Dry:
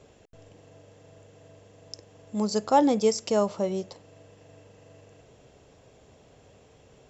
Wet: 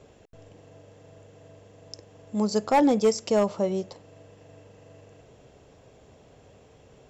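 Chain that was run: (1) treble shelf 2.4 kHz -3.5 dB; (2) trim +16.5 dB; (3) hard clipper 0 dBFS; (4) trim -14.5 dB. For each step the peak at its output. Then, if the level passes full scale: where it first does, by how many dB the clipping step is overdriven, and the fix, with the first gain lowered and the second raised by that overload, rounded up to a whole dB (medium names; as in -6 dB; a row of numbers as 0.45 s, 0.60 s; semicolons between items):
-9.0 dBFS, +7.5 dBFS, 0.0 dBFS, -14.5 dBFS; step 2, 7.5 dB; step 2 +8.5 dB, step 4 -6.5 dB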